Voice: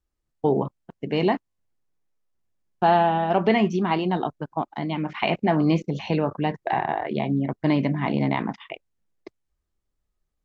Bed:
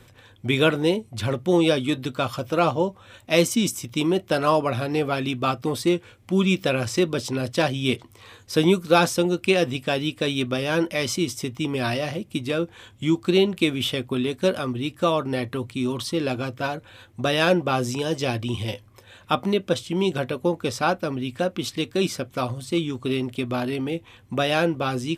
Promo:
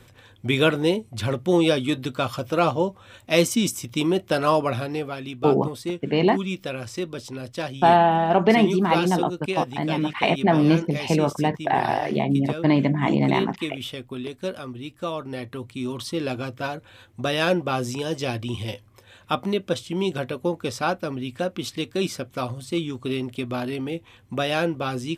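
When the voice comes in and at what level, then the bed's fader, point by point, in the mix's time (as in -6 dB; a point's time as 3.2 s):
5.00 s, +2.5 dB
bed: 4.72 s 0 dB
5.16 s -8 dB
15.06 s -8 dB
16.22 s -2 dB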